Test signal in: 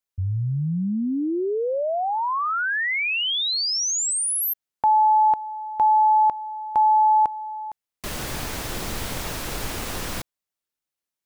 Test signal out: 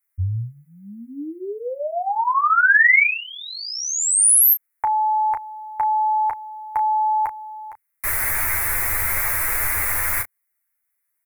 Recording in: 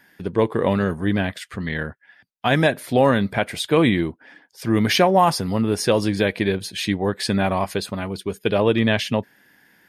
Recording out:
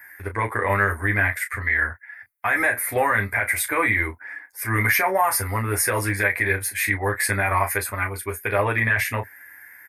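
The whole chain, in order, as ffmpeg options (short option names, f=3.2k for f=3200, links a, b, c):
-af "firequalizer=gain_entry='entry(100,0);entry(160,-27);entry(240,-11);entry(950,2);entry(2100,13);entry(3000,-15);entry(11000,14)':delay=0.05:min_phase=1,alimiter=limit=-12.5dB:level=0:latency=1:release=29,aecho=1:1:10|35:0.708|0.376"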